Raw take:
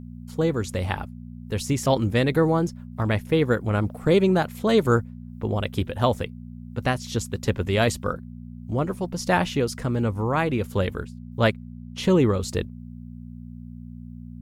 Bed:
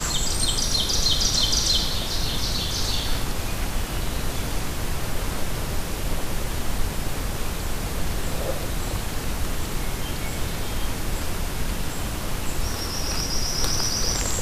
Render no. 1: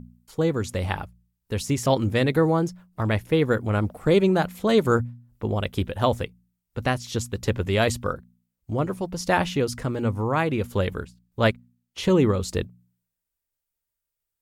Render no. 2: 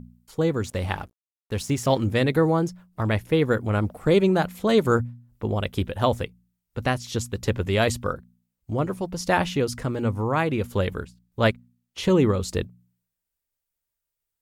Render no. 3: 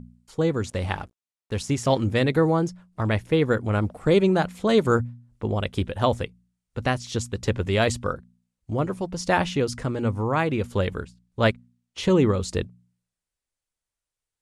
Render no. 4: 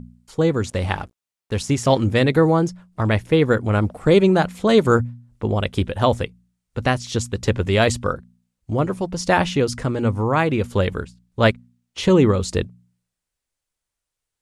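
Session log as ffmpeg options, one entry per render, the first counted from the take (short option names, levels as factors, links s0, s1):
-af "bandreject=f=60:t=h:w=4,bandreject=f=120:t=h:w=4,bandreject=f=180:t=h:w=4,bandreject=f=240:t=h:w=4"
-filter_complex "[0:a]asettb=1/sr,asplit=3[s0][s1][s2];[s0]atrim=end=0.654[s3];[s1]atrim=start=0.65:end=2.01,asetpts=PTS-STARTPTS,afade=t=in:d=0.004:c=qsin,afade=t=out:st=1.356:d=0.004:c=qsin,aeval=exprs='sgn(val(0))*max(abs(val(0))-0.00447,0)':c=same[s4];[s2]atrim=start=2.006[s5];[s3][s4]acrossfade=d=0.004:c1=hsin:c2=qsin[s6];[s6][s5]acrossfade=d=0.004:c1=qsin:c2=hsin"
-af "lowpass=f=10000:w=0.5412,lowpass=f=10000:w=1.3066"
-af "volume=1.68,alimiter=limit=0.708:level=0:latency=1"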